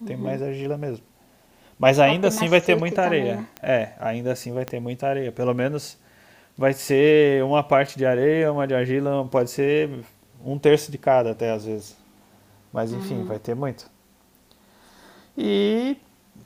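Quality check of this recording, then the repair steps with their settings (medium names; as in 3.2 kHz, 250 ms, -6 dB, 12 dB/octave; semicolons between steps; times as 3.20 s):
3.57 s: pop -17 dBFS
4.68 s: pop -14 dBFS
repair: de-click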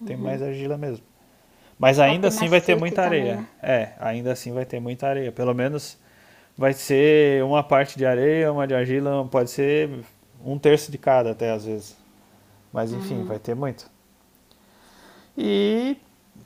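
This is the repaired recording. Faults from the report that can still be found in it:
4.68 s: pop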